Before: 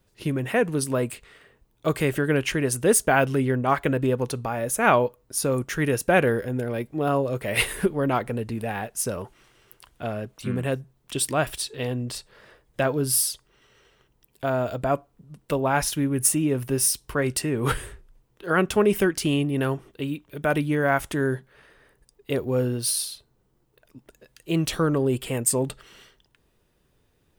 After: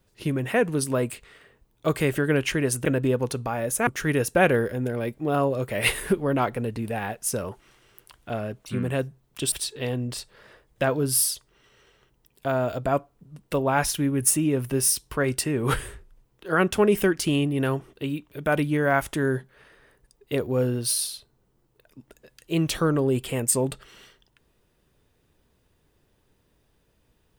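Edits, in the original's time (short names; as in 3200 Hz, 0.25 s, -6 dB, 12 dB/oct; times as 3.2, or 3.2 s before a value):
2.85–3.84 cut
4.86–5.6 cut
11.25–11.5 cut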